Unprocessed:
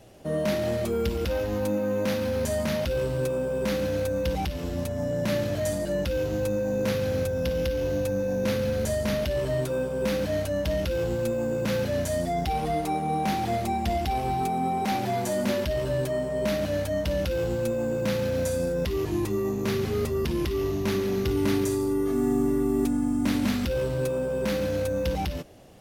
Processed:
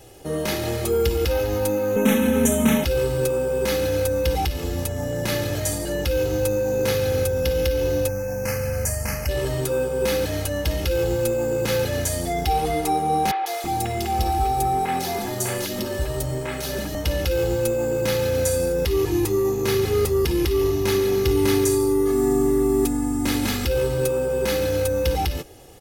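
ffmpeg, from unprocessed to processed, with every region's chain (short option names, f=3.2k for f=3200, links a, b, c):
-filter_complex "[0:a]asettb=1/sr,asplit=3[a][b][c];[a]atrim=end=1.964[d];[b]atrim=start=1.96:end=2.84,asetpts=PTS-STARTPTS,afade=t=in:d=0.004:c=qsin,afade=t=out:st=0.876:d=0.004:c=qsin,asuperstop=centerf=4700:order=4:qfactor=1.8,equalizer=f=240:t=o:w=0.72:g=12,aecho=1:1:4.6:0.98,atrim=end_sample=38808[e];[c]atrim=start=2.836[f];[d][e]acrossfade=d=0.004:c1=hsin:c2=qsin[g];[g][f]acrossfade=d=0.004:c1=qsin:c2=hsin,asettb=1/sr,asplit=3[h][i][j];[h]atrim=end=8.084[k];[i]atrim=start=8.08:end=9.29,asetpts=PTS-STARTPTS,afade=t=in:d=0.004:c=qsin,afade=t=out:st=1.206:d=0.004:c=qsin,asuperstop=centerf=3600:order=4:qfactor=1.4,equalizer=f=360:w=1.9:g=-14.5[l];[j]atrim=start=9.286[m];[k][l]acrossfade=d=0.004:c1=hsin:c2=qsin[n];[n][m]acrossfade=d=0.004:c1=qsin:c2=hsin,asettb=1/sr,asplit=3[o][p][q];[o]atrim=end=13.314[r];[p]atrim=start=13.31:end=16.95,asetpts=PTS-STARTPTS,afade=t=in:d=0.004:c=qsin,afade=t=out:st=3.636:d=0.004:c=qsin,aeval=exprs='sgn(val(0))*max(abs(val(0))-0.00376,0)':c=same,acrossover=split=490|2900[s][t][u];[u]adelay=150[v];[s]adelay=330[w];[w][t][v]amix=inputs=3:normalize=0,atrim=end_sample=160524[x];[q]atrim=start=16.946[y];[r][x]acrossfade=d=0.004:c1=hsin:c2=qsin[z];[z][y]acrossfade=d=0.004:c1=qsin:c2=hsin,highshelf=f=6.1k:g=8.5,aecho=1:1:2.4:0.59,volume=3.5dB"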